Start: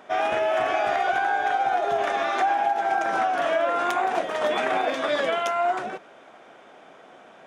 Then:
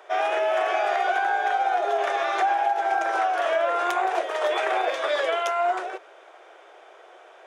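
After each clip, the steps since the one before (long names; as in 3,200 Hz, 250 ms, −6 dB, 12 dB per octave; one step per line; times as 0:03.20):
Butterworth high-pass 340 Hz 72 dB per octave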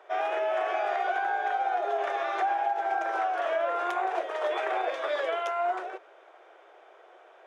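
high-shelf EQ 4,000 Hz −10 dB
level −4.5 dB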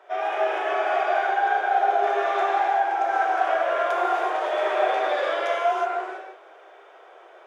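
reverb whose tail is shaped and stops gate 400 ms flat, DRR −4.5 dB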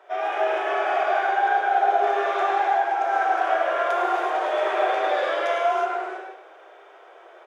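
slap from a distant wall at 18 metres, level −8 dB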